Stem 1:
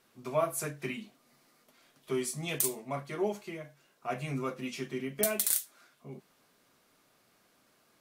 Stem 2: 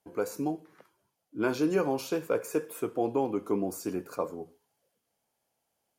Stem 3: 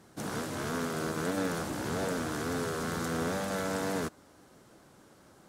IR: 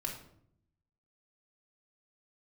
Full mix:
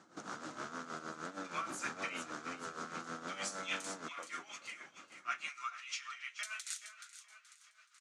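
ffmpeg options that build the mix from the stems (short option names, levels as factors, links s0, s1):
-filter_complex "[0:a]highpass=f=1400:w=0.5412,highpass=f=1400:w=1.3066,alimiter=limit=0.1:level=0:latency=1:release=202,adelay=1200,volume=1.12,asplit=3[s0][s1][s2];[s1]volume=0.299[s3];[s2]volume=0.335[s4];[1:a]acompressor=threshold=0.0251:ratio=6,volume=0.237,asplit=2[s5][s6];[s6]volume=0.251[s7];[2:a]volume=0.794[s8];[s5][s8]amix=inputs=2:normalize=0,acompressor=threshold=0.0112:ratio=6,volume=1[s9];[3:a]atrim=start_sample=2205[s10];[s3][s10]afir=irnorm=-1:irlink=0[s11];[s4][s7]amix=inputs=2:normalize=0,aecho=0:1:426|852|1278|1704|2130|2556|2982:1|0.47|0.221|0.104|0.0488|0.0229|0.0108[s12];[s0][s9][s11][s12]amix=inputs=4:normalize=0,tremolo=f=6.4:d=0.69,highpass=230,equalizer=f=430:t=q:w=4:g=-7,equalizer=f=1300:t=q:w=4:g=9,equalizer=f=6600:t=q:w=4:g=4,lowpass=f=7300:w=0.5412,lowpass=f=7300:w=1.3066"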